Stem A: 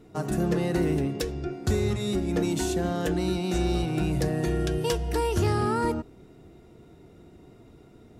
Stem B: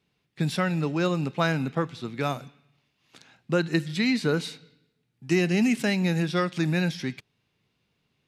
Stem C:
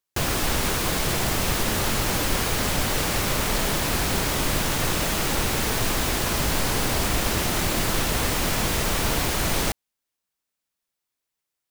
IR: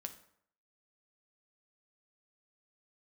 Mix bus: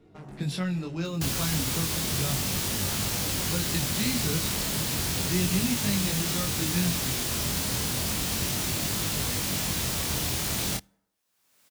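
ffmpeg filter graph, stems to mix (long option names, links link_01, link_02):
-filter_complex "[0:a]lowpass=frequency=3000:poles=1,acompressor=threshold=-27dB:ratio=6,asoftclip=type=tanh:threshold=-35.5dB,volume=-1.5dB[link_01];[1:a]volume=1.5dB[link_02];[2:a]highpass=80,acompressor=mode=upward:threshold=-40dB:ratio=2.5,adelay=1050,volume=1dB,asplit=2[link_03][link_04];[link_04]volume=-16.5dB[link_05];[3:a]atrim=start_sample=2205[link_06];[link_05][link_06]afir=irnorm=-1:irlink=0[link_07];[link_01][link_02][link_03][link_07]amix=inputs=4:normalize=0,acrossover=split=220|3000[link_08][link_09][link_10];[link_09]acompressor=threshold=-41dB:ratio=2[link_11];[link_08][link_11][link_10]amix=inputs=3:normalize=0,flanger=delay=20:depth=5.3:speed=0.33"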